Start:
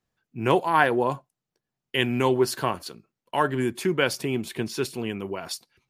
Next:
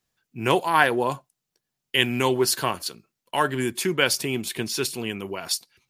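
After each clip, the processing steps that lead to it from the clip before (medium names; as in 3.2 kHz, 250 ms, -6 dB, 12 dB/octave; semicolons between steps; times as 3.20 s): treble shelf 2.3 kHz +10.5 dB; trim -1 dB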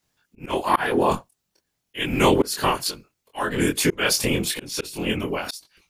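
whisper effect; chorus 0.35 Hz, depth 2.1 ms; slow attack 296 ms; trim +8.5 dB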